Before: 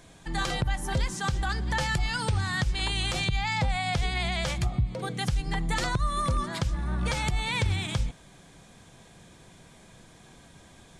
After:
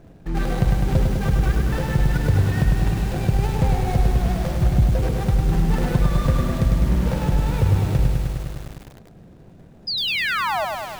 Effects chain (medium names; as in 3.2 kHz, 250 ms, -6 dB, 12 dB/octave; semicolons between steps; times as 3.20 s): median filter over 41 samples; painted sound fall, 9.87–10.65 s, 580–5100 Hz -33 dBFS; bit-crushed delay 102 ms, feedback 80%, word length 8-bit, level -4 dB; trim +8.5 dB